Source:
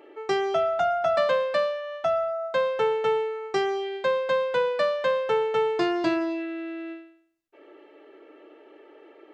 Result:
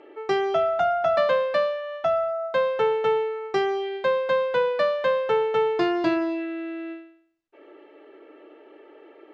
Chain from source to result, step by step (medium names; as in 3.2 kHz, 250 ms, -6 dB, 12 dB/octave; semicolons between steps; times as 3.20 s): distance through air 100 m; trim +2 dB